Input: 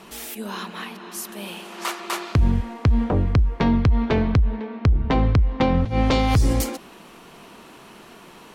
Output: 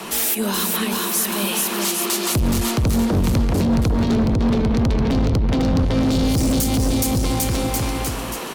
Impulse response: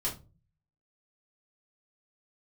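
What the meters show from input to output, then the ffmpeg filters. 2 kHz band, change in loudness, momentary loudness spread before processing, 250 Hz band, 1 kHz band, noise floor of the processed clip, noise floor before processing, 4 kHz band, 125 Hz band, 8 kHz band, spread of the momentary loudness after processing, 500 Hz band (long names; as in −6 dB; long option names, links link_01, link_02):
+3.5 dB, +2.5 dB, 14 LU, +5.5 dB, +1.0 dB, −27 dBFS, −46 dBFS, +8.5 dB, +1.0 dB, +14.0 dB, 2 LU, +3.5 dB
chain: -filter_complex "[0:a]lowshelf=frequency=120:gain=-6.5,aecho=1:1:420|798|1138|1444|1720:0.631|0.398|0.251|0.158|0.1,acrossover=split=130|520|3200[link_01][link_02][link_03][link_04];[link_01]asoftclip=type=tanh:threshold=-24dB[link_05];[link_03]acompressor=threshold=-38dB:ratio=6[link_06];[link_04]highshelf=frequency=7300:gain=7[link_07];[link_05][link_02][link_06][link_07]amix=inputs=4:normalize=0,volume=19.5dB,asoftclip=hard,volume=-19.5dB,acrossover=split=360|3000[link_08][link_09][link_10];[link_09]acompressor=threshold=-35dB:ratio=6[link_11];[link_08][link_11][link_10]amix=inputs=3:normalize=0,alimiter=limit=-19.5dB:level=0:latency=1:release=123,aeval=exprs='0.106*(cos(1*acos(clip(val(0)/0.106,-1,1)))-cos(1*PI/2))+0.015*(cos(5*acos(clip(val(0)/0.106,-1,1)))-cos(5*PI/2))':channel_layout=same,volume=8.5dB"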